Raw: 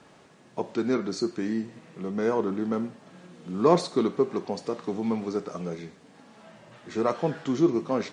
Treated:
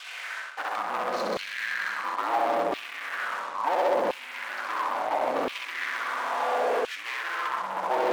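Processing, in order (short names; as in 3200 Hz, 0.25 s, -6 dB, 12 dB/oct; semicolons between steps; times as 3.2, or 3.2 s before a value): three-band isolator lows -12 dB, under 480 Hz, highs -15 dB, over 2200 Hz; in parallel at -6 dB: hard clip -29 dBFS, distortion -6 dB; on the sum: de-hum 83.51 Hz, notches 7; treble ducked by the level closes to 1900 Hz, closed at -26.5 dBFS; flutter echo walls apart 11.1 m, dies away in 1.4 s; reverb RT60 5.1 s, pre-delay 4 ms, DRR 7.5 dB; reverse; compressor 12:1, threshold -37 dBFS, peak gain reduction 21 dB; reverse; frequency shift -150 Hz; sample leveller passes 5; LFO high-pass saw down 0.73 Hz 460–2900 Hz; gain +3 dB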